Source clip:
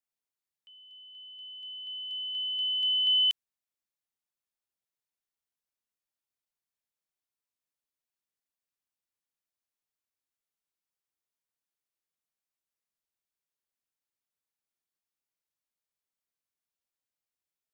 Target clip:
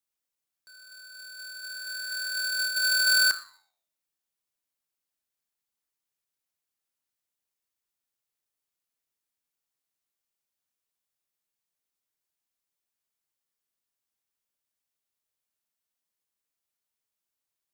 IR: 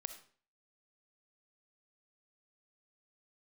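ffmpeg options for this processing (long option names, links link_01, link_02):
-filter_complex "[0:a]flanger=delay=6.1:depth=6.6:regen=-88:speed=0.37:shape=sinusoidal,asplit=2[link_01][link_02];[1:a]atrim=start_sample=2205,highshelf=frequency=3400:gain=9.5[link_03];[link_02][link_03]afir=irnorm=-1:irlink=0,volume=1dB[link_04];[link_01][link_04]amix=inputs=2:normalize=0,aeval=exprs='val(0)*sgn(sin(2*PI*1500*n/s))':channel_layout=same"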